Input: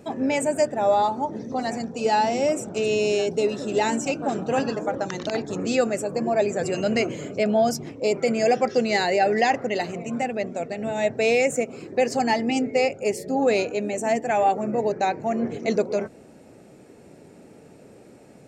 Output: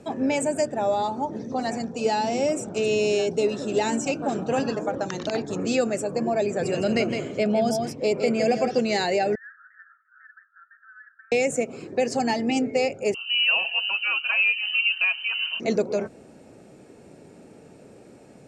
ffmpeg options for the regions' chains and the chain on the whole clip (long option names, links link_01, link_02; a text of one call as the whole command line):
ffmpeg -i in.wav -filter_complex "[0:a]asettb=1/sr,asplit=3[link_01][link_02][link_03];[link_01]atrim=end=6.464[link_04];[link_02]atrim=start=6.46:end=8.79,asetpts=PTS-STARTPTS,afade=type=in:duration=0.004:curve=qsin,afade=type=out:start_time=2.326:duration=0.004:curve=qsin,equalizer=frequency=6700:width_type=o:width=0.37:gain=-6,aecho=1:1:162:0.447,atrim=end_sample=102753[link_05];[link_03]atrim=start=8.786[link_06];[link_04][link_05]acrossfade=duration=0.004:curve1=hsin:curve2=qsin[link_07];[link_07][link_06]acrossfade=duration=0.004:curve1=qsin:curve2=hsin,asettb=1/sr,asplit=3[link_08][link_09][link_10];[link_08]atrim=end=9.354[link_11];[link_09]atrim=start=9.35:end=11.32,asetpts=PTS-STARTPTS,afade=type=in:duration=0.004:curve=qsin,afade=type=out:start_time=1.966:duration=0.004:curve=qsin,asuperpass=centerf=1500:order=12:qfactor=3.1,acompressor=threshold=-45dB:ratio=2.5:attack=3.2:release=140:knee=1:detection=peak[link_12];[link_10]atrim=start=11.316[link_13];[link_11][link_12]acrossfade=duration=0.004:curve1=hsin:curve2=qsin[link_14];[link_14][link_13]acrossfade=duration=0.004:curve1=qsin:curve2=hsin,asettb=1/sr,asplit=3[link_15][link_16][link_17];[link_15]atrim=end=13.144[link_18];[link_16]atrim=start=13.14:end=15.6,asetpts=PTS-STARTPTS,afade=type=in:duration=0.004:curve=qsin,afade=type=out:start_time=2.456:duration=0.004:curve=qsin,aecho=1:1:6.7:0.57,atrim=end_sample=108486,lowpass=frequency=2700:width_type=q:width=0.5098,lowpass=frequency=2700:width_type=q:width=0.6013,lowpass=frequency=2700:width_type=q:width=0.9,lowpass=frequency=2700:width_type=q:width=2.563,afreqshift=-3200,highpass=frequency=160:width=0.5412,highpass=frequency=160:width=1.3066[link_19];[link_17]atrim=start=15.596[link_20];[link_18][link_19]acrossfade=duration=0.004:curve1=hsin:curve2=qsin[link_21];[link_21][link_20]acrossfade=duration=0.004:curve1=qsin:curve2=hsin,lowpass=frequency=11000:width=0.5412,lowpass=frequency=11000:width=1.3066,bandreject=frequency=2000:width=24,acrossover=split=460|3000[link_22][link_23][link_24];[link_23]acompressor=threshold=-24dB:ratio=6[link_25];[link_22][link_25][link_24]amix=inputs=3:normalize=0" out.wav